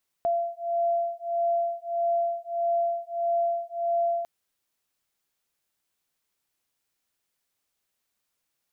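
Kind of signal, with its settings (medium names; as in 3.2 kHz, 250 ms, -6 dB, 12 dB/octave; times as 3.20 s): beating tones 683 Hz, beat 1.6 Hz, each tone -27 dBFS 4.00 s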